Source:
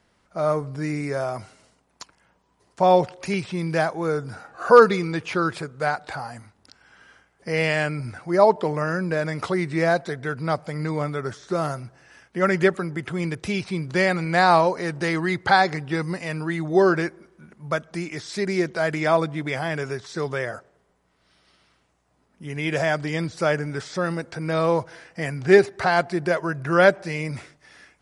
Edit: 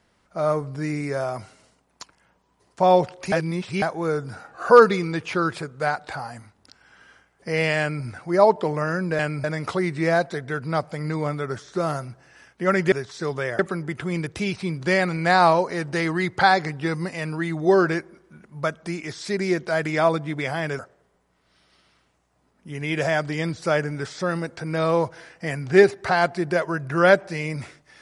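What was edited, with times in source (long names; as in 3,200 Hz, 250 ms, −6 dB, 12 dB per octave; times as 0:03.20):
0:03.32–0:03.82: reverse
0:07.80–0:08.05: duplicate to 0:09.19
0:19.87–0:20.54: move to 0:12.67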